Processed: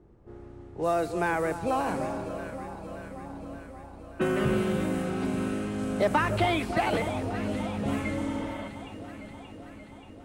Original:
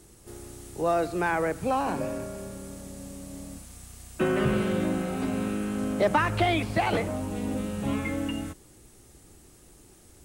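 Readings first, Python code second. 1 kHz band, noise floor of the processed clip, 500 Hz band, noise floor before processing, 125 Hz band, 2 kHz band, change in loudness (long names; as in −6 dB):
−0.5 dB, −47 dBFS, −0.5 dB, −55 dBFS, −1.0 dB, −1.0 dB, −1.5 dB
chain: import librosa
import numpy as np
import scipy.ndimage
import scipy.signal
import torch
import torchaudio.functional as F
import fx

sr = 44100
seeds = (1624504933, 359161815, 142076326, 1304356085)

y = fx.env_lowpass(x, sr, base_hz=950.0, full_db=-23.5)
y = fx.echo_alternate(y, sr, ms=290, hz=1100.0, feedback_pct=81, wet_db=-9.5)
y = fx.spec_repair(y, sr, seeds[0], start_s=8.26, length_s=0.4, low_hz=540.0, high_hz=3800.0, source='before')
y = y * librosa.db_to_amplitude(-1.5)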